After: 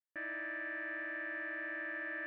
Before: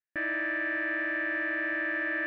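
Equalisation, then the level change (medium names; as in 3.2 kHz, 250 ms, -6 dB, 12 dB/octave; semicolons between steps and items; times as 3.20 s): bass shelf 110 Hz -10 dB; bass shelf 320 Hz -8 dB; treble shelf 2.5 kHz -8.5 dB; -7.0 dB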